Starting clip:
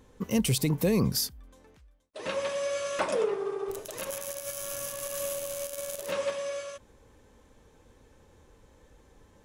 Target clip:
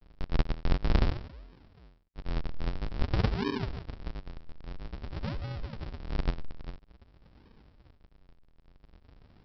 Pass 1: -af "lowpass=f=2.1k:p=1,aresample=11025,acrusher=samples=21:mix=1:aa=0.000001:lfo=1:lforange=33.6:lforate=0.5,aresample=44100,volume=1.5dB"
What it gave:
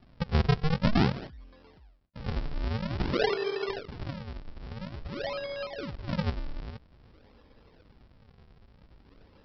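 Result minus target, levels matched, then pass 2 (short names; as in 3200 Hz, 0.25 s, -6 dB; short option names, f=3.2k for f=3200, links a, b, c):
decimation with a swept rate: distortion -15 dB
-af "lowpass=f=2.1k:p=1,aresample=11025,acrusher=samples=77:mix=1:aa=0.000001:lfo=1:lforange=123:lforate=0.5,aresample=44100,volume=1.5dB"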